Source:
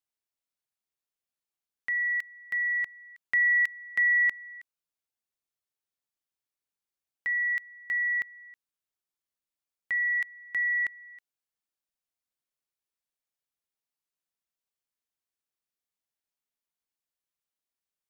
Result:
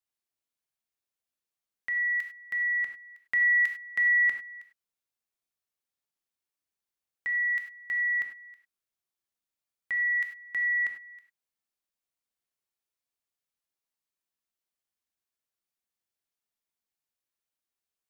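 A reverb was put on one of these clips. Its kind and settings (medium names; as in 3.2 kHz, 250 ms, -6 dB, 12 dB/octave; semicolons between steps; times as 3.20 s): gated-style reverb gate 120 ms flat, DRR 4 dB; trim -1.5 dB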